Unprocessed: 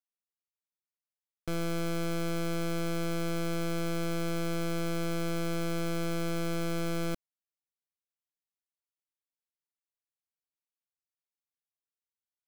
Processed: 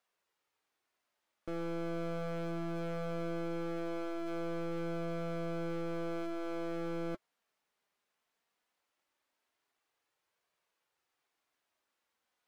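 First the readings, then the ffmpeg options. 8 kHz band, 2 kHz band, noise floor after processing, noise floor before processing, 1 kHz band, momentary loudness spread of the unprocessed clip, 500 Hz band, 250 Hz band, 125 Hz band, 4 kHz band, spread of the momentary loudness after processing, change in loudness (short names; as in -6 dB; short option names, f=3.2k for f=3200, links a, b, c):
-19.0 dB, -8.0 dB, -85 dBFS, under -85 dBFS, -4.5 dB, 1 LU, -3.0 dB, -5.5 dB, -8.0 dB, -13.0 dB, 1 LU, -5.5 dB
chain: -filter_complex "[0:a]aeval=exprs='0.0299*sin(PI/2*3.16*val(0)/0.0299)':c=same,flanger=delay=1.7:depth=3.3:regen=-50:speed=0.19:shape=triangular,asplit=2[a][b];[b]highpass=f=720:p=1,volume=19dB,asoftclip=type=tanh:threshold=-30.5dB[c];[a][c]amix=inputs=2:normalize=0,lowpass=f=1.1k:p=1,volume=-6dB"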